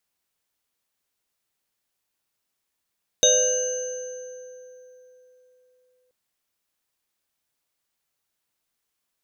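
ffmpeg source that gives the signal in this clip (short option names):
-f lavfi -i "aevalsrc='0.112*pow(10,-3*t/3.69)*sin(2*PI*504*t)+0.0794*pow(10,-3*t/1.3)*sin(2*PI*606*t)+0.0178*pow(10,-3*t/2.95)*sin(2*PI*1580*t)+0.0316*pow(10,-3*t/1.61)*sin(2*PI*2880*t)+0.158*pow(10,-3*t/0.4)*sin(2*PI*3730*t)+0.178*pow(10,-3*t/2.07)*sin(2*PI*6230*t)':d=2.88:s=44100"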